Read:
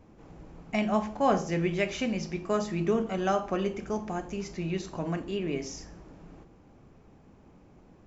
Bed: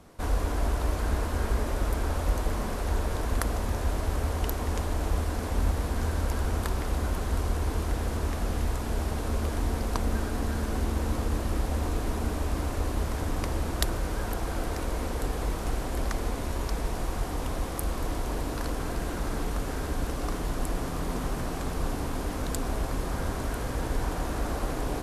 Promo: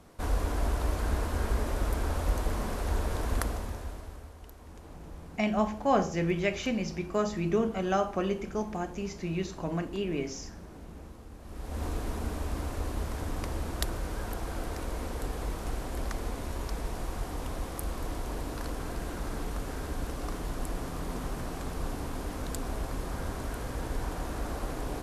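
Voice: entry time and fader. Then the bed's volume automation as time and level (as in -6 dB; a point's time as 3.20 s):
4.65 s, -0.5 dB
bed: 3.40 s -2 dB
4.35 s -20 dB
11.38 s -20 dB
11.83 s -4.5 dB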